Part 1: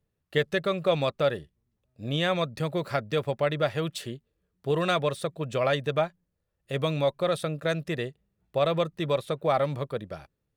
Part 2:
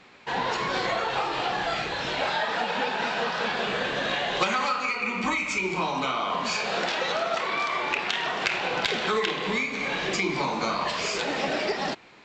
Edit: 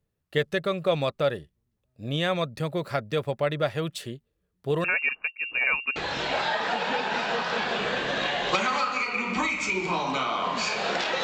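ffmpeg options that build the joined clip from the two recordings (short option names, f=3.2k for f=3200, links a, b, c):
-filter_complex "[0:a]asettb=1/sr,asplit=3[a][b][c];[a]atrim=end=4.844[d];[b]atrim=start=4.84:end=5.96,asetpts=PTS-STARTPTS,afade=t=in:d=0.004:c=qsin,afade=t=out:st=1.116:d=0.004:c=qsin,lowpass=f=2.5k:t=q:w=0.5098,lowpass=f=2.5k:t=q:w=0.6013,lowpass=f=2.5k:t=q:w=0.9,lowpass=f=2.5k:t=q:w=2.563,afreqshift=-2900[e];[c]atrim=start=5.956[f];[d][e]acrossfade=d=0.004:c1=hsin:c2=qsin[g];[g][f]acrossfade=d=0.004:c1=qsin:c2=hsin,apad=whole_dur=11.23,atrim=end=11.23,atrim=end=5.962[h];[1:a]atrim=start=1.838:end=7.11[i];[h][i]acrossfade=d=0.004:c1=hsin:c2=hsin"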